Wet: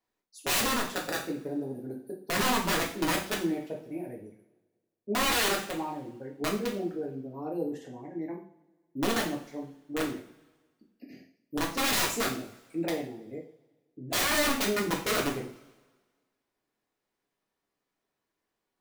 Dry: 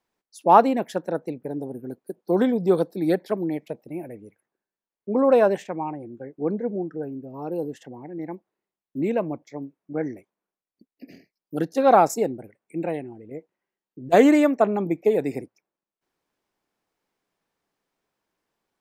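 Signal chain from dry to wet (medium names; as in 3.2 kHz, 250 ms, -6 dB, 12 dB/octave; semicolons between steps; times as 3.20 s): integer overflow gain 17.5 dB; two-slope reverb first 0.44 s, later 1.5 s, from -20 dB, DRR -2 dB; trim -8 dB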